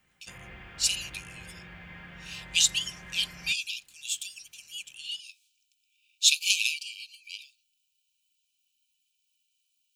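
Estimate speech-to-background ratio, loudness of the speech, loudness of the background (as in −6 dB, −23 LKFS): 19.5 dB, −27.0 LKFS, −46.5 LKFS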